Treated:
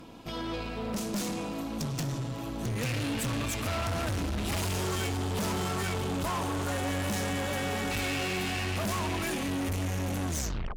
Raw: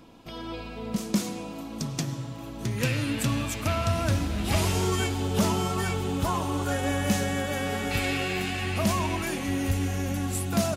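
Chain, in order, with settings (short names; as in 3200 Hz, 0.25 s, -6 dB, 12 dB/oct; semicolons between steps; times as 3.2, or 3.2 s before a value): tape stop at the end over 0.49 s; tube stage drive 34 dB, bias 0.4; gain +5 dB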